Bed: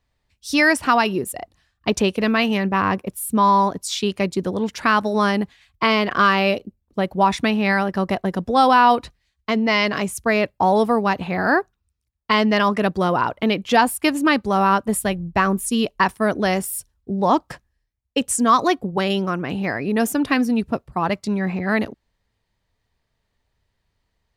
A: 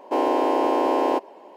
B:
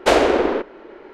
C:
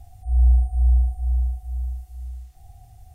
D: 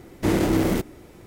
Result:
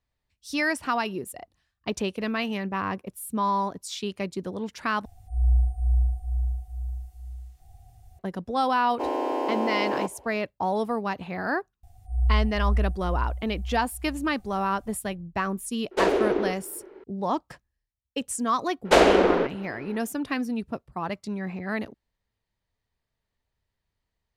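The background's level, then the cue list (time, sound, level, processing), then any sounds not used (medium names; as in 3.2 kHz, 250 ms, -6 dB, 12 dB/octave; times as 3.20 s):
bed -9.5 dB
5.05 s: replace with C -5 dB
8.88 s: add A -6.5 dB
11.83 s: add C -6.5 dB
15.91 s: add B -11.5 dB + peaking EQ 390 Hz +8.5 dB 0.57 oct
18.85 s: add B -2 dB
not used: D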